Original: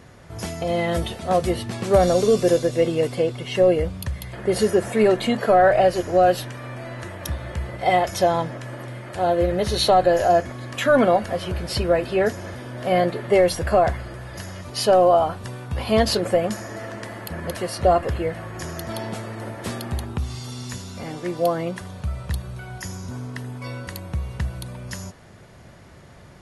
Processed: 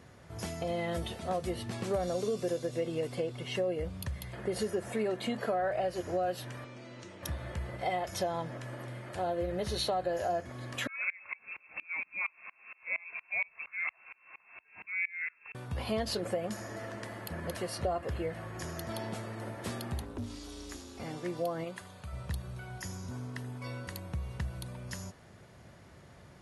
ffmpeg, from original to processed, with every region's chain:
-filter_complex "[0:a]asettb=1/sr,asplit=3[a][b][c];[a]atrim=end=6.644[d];[b]atrim=start=6.64:end=7.23,asetpts=PTS-STARTPTS,afade=t=in:d=0.004:c=qsin,afade=t=out:st=0.586:d=0.004:c=qsin,highpass=190,equalizer=f=710:t=q:w=4:g=-9,equalizer=f=1.1k:t=q:w=4:g=-5,equalizer=f=1.7k:t=q:w=4:g=-9,equalizer=f=5.9k:t=q:w=4:g=4,lowpass=f=7.3k:w=0.5412,lowpass=f=7.3k:w=1.3066,acrossover=split=290|3000[e][f][g];[f]acompressor=threshold=-40dB:ratio=6:attack=3.2:release=140:knee=2.83:detection=peak[h];[e][h][g]amix=inputs=3:normalize=0[i];[c]atrim=start=7.226[j];[d][i]acrossfade=d=0.004:c1=hsin:c2=qsin[k];[k][j]acrossfade=d=0.004:c1=qsin:c2=hsin,asettb=1/sr,asplit=3[l][m][n];[l]atrim=end=10.874[o];[m]atrim=start=10.87:end=15.55,asetpts=PTS-STARTPTS,afade=t=in:d=0.004:c=qsin,afade=t=out:st=4.676:d=0.004:c=qsin,highpass=f=130:w=0.5412,highpass=f=130:w=1.3066,lowpass=f=2.4k:t=q:w=0.5098,lowpass=f=2.4k:t=q:w=0.6013,lowpass=f=2.4k:t=q:w=0.9,lowpass=f=2.4k:t=q:w=2.563,afreqshift=-2800,aeval=exprs='val(0)*pow(10,-29*if(lt(mod(-4.3*n/s,1),2*abs(-4.3)/1000),1-mod(-4.3*n/s,1)/(2*abs(-4.3)/1000),(mod(-4.3*n/s,1)-2*abs(-4.3)/1000)/(1-2*abs(-4.3)/1000))/20)':c=same[p];[n]atrim=start=15.546[q];[o][p]acrossfade=d=0.004:c1=hsin:c2=qsin[r];[r][q]acrossfade=d=0.004:c1=qsin:c2=hsin,asettb=1/sr,asplit=3[s][t][u];[s]atrim=end=20.024[v];[t]atrim=start=20.02:end=21,asetpts=PTS-STARTPTS,afade=t=in:d=0.004:c=qsin,afade=t=out:st=0.976:d=0.004:c=qsin,aeval=exprs='val(0)*sin(2*PI*170*n/s)':c=same,asoftclip=type=hard:threshold=-23.5dB[w];[u]atrim=start=20.996[x];[v][w]acrossfade=d=0.004:c1=hsin:c2=qsin[y];[y][x]acrossfade=d=0.004:c1=qsin:c2=hsin,asettb=1/sr,asplit=3[z][aa][ab];[z]atrim=end=21.644[ac];[aa]atrim=start=21.64:end=22.13,asetpts=PTS-STARTPTS,afade=t=in:d=0.004:c=qsin,afade=t=out:st=0.486:d=0.004:c=qsin,lowshelf=f=410:g=-9.5,bandreject=f=5.6k:w=9.1[ad];[ab]atrim=start=22.126[ae];[ac][ad]acrossfade=d=0.004:c1=hsin:c2=qsin[af];[af][ae]acrossfade=d=0.004:c1=qsin:c2=hsin,highpass=44,acompressor=threshold=-23dB:ratio=3,volume=-8dB"

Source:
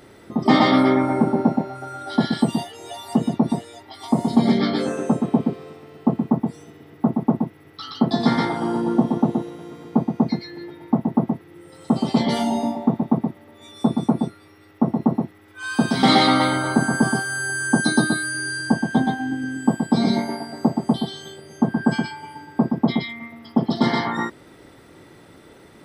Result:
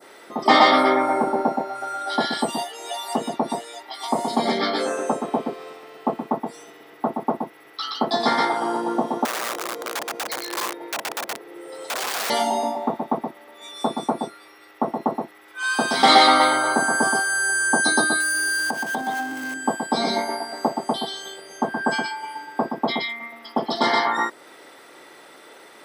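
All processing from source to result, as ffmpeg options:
-filter_complex "[0:a]asettb=1/sr,asplit=3[a][b][c];[a]atrim=end=9.254[d];[b]atrim=start=9.25:end=12.3,asetpts=PTS-STARTPTS,afade=t=in:d=0.004:c=qsin,afade=t=out:st=3.046:d=0.004:c=qsin,equalizer=f=470:w=1.2:g=11,acompressor=threshold=-20dB:ratio=12:attack=3.2:release=140:knee=1:detection=peak,aeval=exprs='(mod(18.8*val(0)+1,2)-1)/18.8':c=same[e];[c]atrim=start=12.296[f];[d][e]acrossfade=d=0.004:c1=hsin:c2=qsin[g];[g][f]acrossfade=d=0.004:c1=qsin:c2=hsin,asettb=1/sr,asplit=3[h][i][j];[h]atrim=end=18.204[k];[i]atrim=start=18.2:end=19.54,asetpts=PTS-STARTPTS,afade=t=in:d=0.004:c=qsin,afade=t=out:st=1.336:d=0.004:c=qsin,aeval=exprs='val(0)+0.5*0.0251*sgn(val(0))':c=same,acompressor=threshold=-23dB:ratio=2.5:attack=3.2:release=140:knee=1:detection=peak[l];[j]atrim=start=19.536[m];[k][l]acrossfade=d=0.004:c1=hsin:c2=qsin[n];[n][m]acrossfade=d=0.004:c1=qsin:c2=hsin,adynamicequalizer=threshold=0.01:dfrequency=2900:dqfactor=0.82:tfrequency=2900:tqfactor=0.82:attack=5:release=100:ratio=0.375:range=2.5:mode=cutabove:tftype=bell,highpass=570,volume=6dB"

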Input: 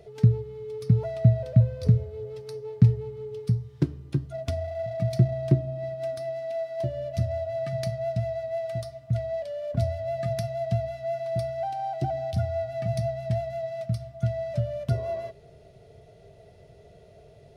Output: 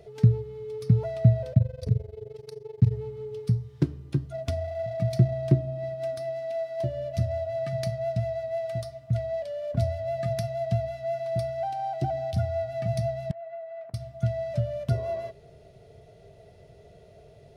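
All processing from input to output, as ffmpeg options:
-filter_complex "[0:a]asettb=1/sr,asplit=3[a][b][c];[a]atrim=end=1.534[d];[b]atrim=start=1.53:end=2.92,asetpts=PTS-STARTPTS,afade=t=in:d=0.004:c=qsin,afade=t=out:st=1.386:d=0.004:c=qsin,equalizer=f=1.3k:t=o:w=0.56:g=-4.5,tremolo=f=23:d=0.919[e];[c]atrim=start=2.916[f];[d][e]acrossfade=d=0.004:c1=hsin:c2=qsin[g];[g][f]acrossfade=d=0.004:c1=qsin:c2=hsin,asettb=1/sr,asplit=3[h][i][j];[h]atrim=end=13.314[k];[i]atrim=start=13.31:end=13.94,asetpts=PTS-STARTPTS,afade=t=in:d=0.004:c=qsin,afade=t=out:st=0.626:d=0.004:c=qsin,acompressor=threshold=-34dB:ratio=10:attack=3.2:release=140:knee=1:detection=peak,asuperpass=centerf=1000:order=4:qfactor=0.65,asplit=2[l][m];[m]adelay=16,volume=-13.5dB[n];[l][n]amix=inputs=2:normalize=0,atrim=end_sample=27783[o];[j]atrim=start=13.936[p];[k][o]acrossfade=d=0.004:c1=hsin:c2=qsin[q];[q][p]acrossfade=d=0.004:c1=qsin:c2=hsin"

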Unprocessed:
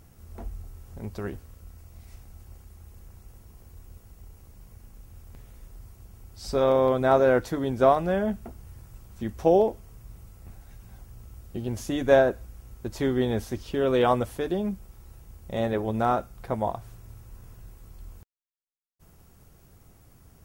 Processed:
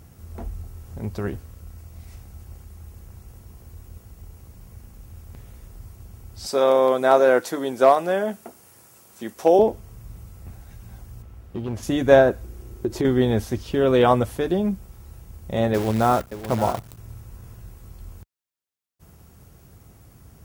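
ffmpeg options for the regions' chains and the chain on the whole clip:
-filter_complex "[0:a]asettb=1/sr,asplit=3[a][b][c];[a]atrim=end=6.464[d];[b]atrim=start=6.46:end=9.59,asetpts=PTS-STARTPTS,afade=t=in:d=0.004:c=qsin,afade=t=out:st=3.126:d=0.004:c=qsin,equalizer=f=9.7k:w=0.62:g=6.5,asoftclip=type=hard:threshold=-9.5dB,highpass=350[e];[c]atrim=start=9.586[f];[d][e]acrossfade=d=0.004:c1=hsin:c2=qsin[g];[g][f]acrossfade=d=0.004:c1=qsin:c2=hsin,asettb=1/sr,asplit=3[h][i][j];[h]atrim=end=11.224[k];[i]atrim=start=11.22:end=11.83,asetpts=PTS-STARTPTS,afade=t=in:d=0.004:c=qsin,afade=t=out:st=0.606:d=0.004:c=qsin,bass=f=250:g=-4,treble=f=4k:g=-11,asoftclip=type=hard:threshold=-28.5dB[l];[j]atrim=start=11.826[m];[k][l]acrossfade=d=0.004:c1=hsin:c2=qsin[n];[n][m]acrossfade=d=0.004:c1=qsin:c2=hsin,asettb=1/sr,asplit=3[o][p][q];[o]atrim=end=12.434[r];[p]atrim=start=12.43:end=13.05,asetpts=PTS-STARTPTS,afade=t=in:d=0.004:c=qsin,afade=t=out:st=0.616:d=0.004:c=qsin,equalizer=f=360:t=o:w=0.6:g=13.5,acompressor=threshold=-24dB:ratio=6:attack=3.2:release=140:knee=1:detection=peak[s];[q]atrim=start=13.046[t];[r][s]acrossfade=d=0.004:c1=hsin:c2=qsin[u];[u][t]acrossfade=d=0.004:c1=qsin:c2=hsin,asettb=1/sr,asplit=3[v][w][x];[v]atrim=end=15.744[y];[w]atrim=start=15.74:end=16.98,asetpts=PTS-STARTPTS,afade=t=in:d=0.004:c=qsin,afade=t=out:st=1.236:d=0.004:c=qsin,acrusher=bits=7:dc=4:mix=0:aa=0.000001,aecho=1:1:574:0.251,atrim=end_sample=54684[z];[x]atrim=start=16.976[aa];[y][z]acrossfade=d=0.004:c1=hsin:c2=qsin[ab];[ab][aa]acrossfade=d=0.004:c1=qsin:c2=hsin,highpass=52,lowshelf=f=170:g=4,volume=4.5dB"

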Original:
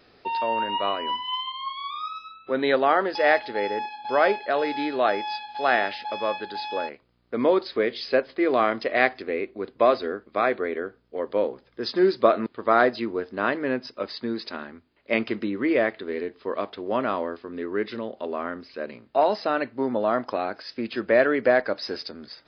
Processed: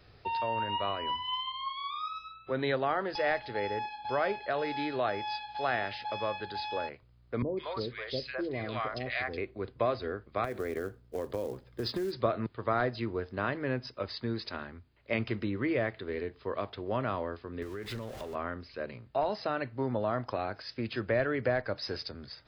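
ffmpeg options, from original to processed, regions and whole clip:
-filter_complex "[0:a]asettb=1/sr,asplit=3[a][b][c];[a]atrim=end=7.424[d];[b]atrim=start=7.42:end=9.38,asetpts=PTS-STARTPTS,afade=t=in:d=0.004:c=qsin,afade=t=out:st=1.956:d=0.004:c=qsin,equalizer=f=570:w=0.49:g=-6,acrossover=split=600|1800[e][f][g];[g]adelay=150[h];[f]adelay=210[i];[e][i][h]amix=inputs=3:normalize=0,atrim=end_sample=86436[j];[c]atrim=start=9.376[k];[d][j]acrossfade=d=0.004:c1=hsin:c2=qsin[l];[l][k]acrossfade=d=0.004:c1=qsin:c2=hsin,asettb=1/sr,asplit=3[m][n][o];[m]atrim=end=10.444[p];[n]atrim=start=10.44:end=12.13,asetpts=PTS-STARTPTS,afade=t=in:d=0.004:c=qsin,afade=t=out:st=1.686:d=0.004:c=qsin,equalizer=f=280:t=o:w=2.1:g=6,acompressor=threshold=-23dB:ratio=12:attack=3.2:release=140:knee=1:detection=peak,acrusher=bits=6:mode=log:mix=0:aa=0.000001[q];[o]atrim=start=12.126[r];[p][q]acrossfade=d=0.004:c1=hsin:c2=qsin[s];[s][r]acrossfade=d=0.004:c1=qsin:c2=hsin,asettb=1/sr,asplit=3[t][u][v];[t]atrim=end=17.624[w];[u]atrim=start=17.62:end=18.35,asetpts=PTS-STARTPTS,afade=t=in:d=0.004:c=qsin,afade=t=out:st=0.726:d=0.004:c=qsin,aeval=exprs='val(0)+0.5*0.0158*sgn(val(0))':c=same,acompressor=threshold=-31dB:ratio=6:attack=3.2:release=140:knee=1:detection=peak[x];[v]atrim=start=18.346[y];[w][x]acrossfade=d=0.004:c1=hsin:c2=qsin[z];[z][y]acrossfade=d=0.004:c1=qsin:c2=hsin,acrossover=split=260[aa][ab];[ab]acompressor=threshold=-26dB:ratio=2[ac];[aa][ac]amix=inputs=2:normalize=0,lowshelf=f=160:t=q:w=1.5:g=12,volume=-4dB"

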